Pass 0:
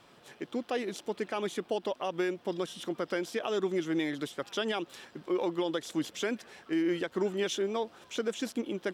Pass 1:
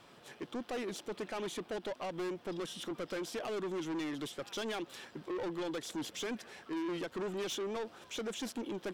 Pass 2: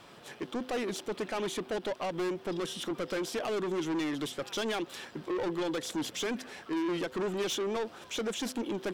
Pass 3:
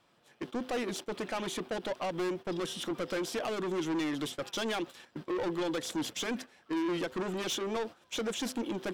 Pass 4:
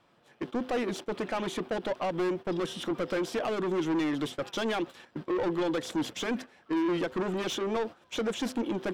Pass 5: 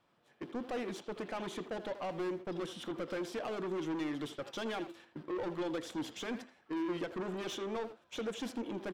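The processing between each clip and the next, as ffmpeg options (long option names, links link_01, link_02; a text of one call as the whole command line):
ffmpeg -i in.wav -af "asoftclip=type=tanh:threshold=-34.5dB" out.wav
ffmpeg -i in.wav -af "bandreject=frequency=127.8:width_type=h:width=4,bandreject=frequency=255.6:width_type=h:width=4,bandreject=frequency=383.4:width_type=h:width=4,bandreject=frequency=511.2:width_type=h:width=4,volume=5.5dB" out.wav
ffmpeg -i in.wav -af "agate=range=-15dB:threshold=-41dB:ratio=16:detection=peak,bandreject=frequency=410:width=12" out.wav
ffmpeg -i in.wav -af "highshelf=frequency=3600:gain=-9,volume=4dB" out.wav
ffmpeg -i in.wav -filter_complex "[0:a]bandreject=frequency=335.9:width_type=h:width=4,bandreject=frequency=671.8:width_type=h:width=4,bandreject=frequency=1007.7:width_type=h:width=4,bandreject=frequency=1343.6:width_type=h:width=4,bandreject=frequency=1679.5:width_type=h:width=4,bandreject=frequency=2015.4:width_type=h:width=4,bandreject=frequency=2351.3:width_type=h:width=4,bandreject=frequency=2687.2:width_type=h:width=4,bandreject=frequency=3023.1:width_type=h:width=4,bandreject=frequency=3359:width_type=h:width=4,bandreject=frequency=3694.9:width_type=h:width=4,bandreject=frequency=4030.8:width_type=h:width=4,bandreject=frequency=4366.7:width_type=h:width=4,bandreject=frequency=4702.6:width_type=h:width=4,bandreject=frequency=5038.5:width_type=h:width=4,bandreject=frequency=5374.4:width_type=h:width=4,bandreject=frequency=5710.3:width_type=h:width=4,bandreject=frequency=6046.2:width_type=h:width=4,bandreject=frequency=6382.1:width_type=h:width=4,bandreject=frequency=6718:width_type=h:width=4,bandreject=frequency=7053.9:width_type=h:width=4,bandreject=frequency=7389.8:width_type=h:width=4,bandreject=frequency=7725.7:width_type=h:width=4,bandreject=frequency=8061.6:width_type=h:width=4,bandreject=frequency=8397.5:width_type=h:width=4,bandreject=frequency=8733.4:width_type=h:width=4,bandreject=frequency=9069.3:width_type=h:width=4,asplit=2[link_01][link_02];[link_02]adelay=80,highpass=300,lowpass=3400,asoftclip=type=hard:threshold=-29.5dB,volume=-9dB[link_03];[link_01][link_03]amix=inputs=2:normalize=0,volume=-8dB" out.wav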